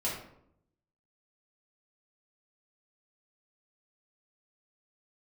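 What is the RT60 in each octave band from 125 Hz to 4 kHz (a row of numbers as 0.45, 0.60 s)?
1.1, 0.90, 0.80, 0.65, 0.55, 0.40 s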